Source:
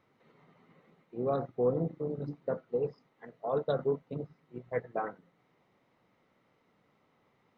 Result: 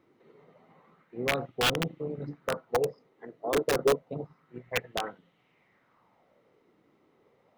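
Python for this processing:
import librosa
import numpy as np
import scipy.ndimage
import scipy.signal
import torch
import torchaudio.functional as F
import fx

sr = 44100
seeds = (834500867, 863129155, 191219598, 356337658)

y = (np.mod(10.0 ** (22.5 / 20.0) * x + 1.0, 2.0) - 1.0) / 10.0 ** (22.5 / 20.0)
y = fx.bell_lfo(y, sr, hz=0.29, low_hz=330.0, high_hz=3200.0, db=12)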